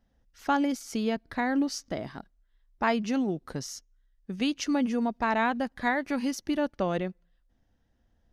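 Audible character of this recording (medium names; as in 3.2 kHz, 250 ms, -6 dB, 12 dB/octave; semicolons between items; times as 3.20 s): noise floor -71 dBFS; spectral tilt -4.5 dB/octave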